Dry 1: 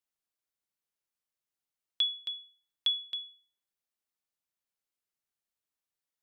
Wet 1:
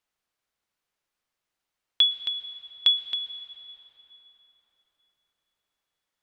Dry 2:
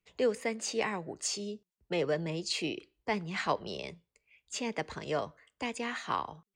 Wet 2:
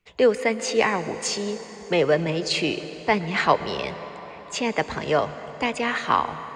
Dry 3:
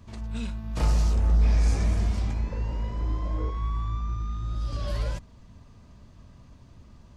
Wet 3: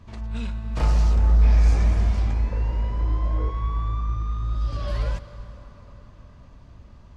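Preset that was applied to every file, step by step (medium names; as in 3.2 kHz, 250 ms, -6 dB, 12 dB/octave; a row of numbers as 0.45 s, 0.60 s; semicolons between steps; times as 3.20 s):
low-pass 2.8 kHz 6 dB/octave; peaking EQ 200 Hz -4.5 dB 3 oct; plate-style reverb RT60 4.9 s, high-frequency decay 0.6×, pre-delay 100 ms, DRR 12 dB; normalise loudness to -24 LUFS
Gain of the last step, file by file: +12.5 dB, +13.5 dB, +5.0 dB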